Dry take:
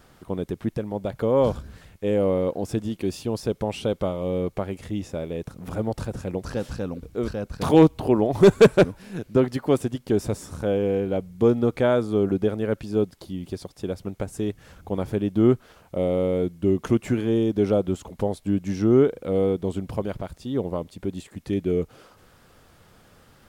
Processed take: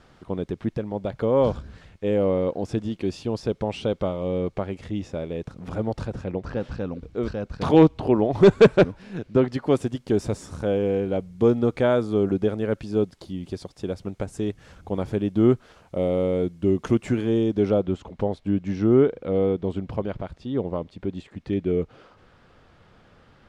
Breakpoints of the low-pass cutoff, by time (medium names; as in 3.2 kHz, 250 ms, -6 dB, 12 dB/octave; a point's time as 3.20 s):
5.99 s 5.5 kHz
6.53 s 2.7 kHz
7.01 s 4.8 kHz
9.43 s 4.8 kHz
9.87 s 8 kHz
17.37 s 8 kHz
17.92 s 3.7 kHz